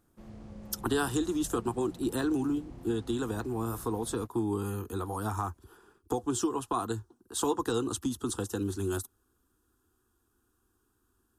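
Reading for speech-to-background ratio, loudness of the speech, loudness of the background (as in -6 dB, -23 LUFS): 16.5 dB, -32.5 LUFS, -49.0 LUFS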